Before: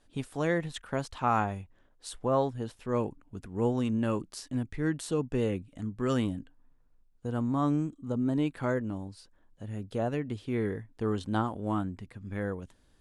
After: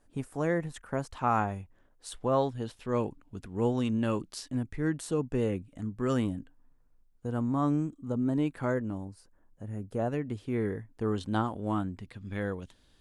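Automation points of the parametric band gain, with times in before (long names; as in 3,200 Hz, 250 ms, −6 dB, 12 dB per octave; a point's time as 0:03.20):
parametric band 3,600 Hz 1.1 octaves
−11 dB
from 0:01.12 −4.5 dB
from 0:02.12 +3.5 dB
from 0:04.50 −4.5 dB
from 0:09.05 −14.5 dB
from 0:09.99 −5.5 dB
from 0:11.16 +1 dB
from 0:12.08 +8 dB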